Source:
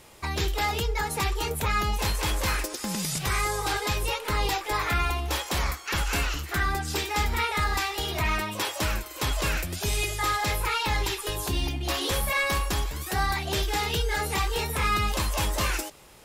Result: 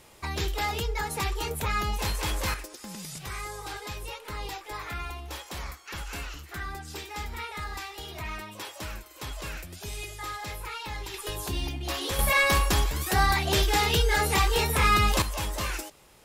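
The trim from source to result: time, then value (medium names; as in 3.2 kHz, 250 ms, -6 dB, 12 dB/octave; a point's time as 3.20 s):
-2.5 dB
from 2.54 s -10 dB
from 11.14 s -3.5 dB
from 12.19 s +3.5 dB
from 15.22 s -4.5 dB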